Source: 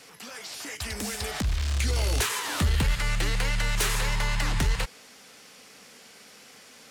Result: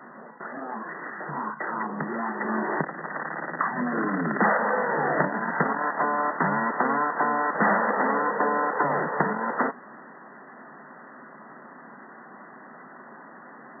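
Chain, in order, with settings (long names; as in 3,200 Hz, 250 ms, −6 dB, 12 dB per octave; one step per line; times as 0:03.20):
linear-phase brick-wall band-pass 290–4,000 Hz
wrong playback speed 15 ips tape played at 7.5 ips
level +8 dB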